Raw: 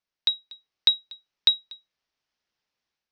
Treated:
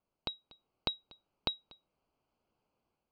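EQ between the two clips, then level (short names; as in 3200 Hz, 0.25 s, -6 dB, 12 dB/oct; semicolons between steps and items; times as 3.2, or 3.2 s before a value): running mean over 24 samples; +11.0 dB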